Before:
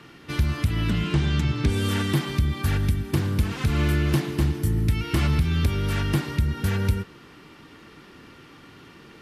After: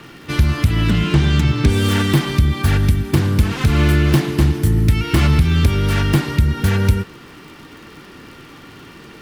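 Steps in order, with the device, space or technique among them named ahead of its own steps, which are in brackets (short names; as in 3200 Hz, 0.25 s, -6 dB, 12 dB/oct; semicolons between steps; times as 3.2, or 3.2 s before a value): record under a worn stylus (tracing distortion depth 0.051 ms; crackle 93/s -43 dBFS; pink noise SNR 41 dB); gain +8 dB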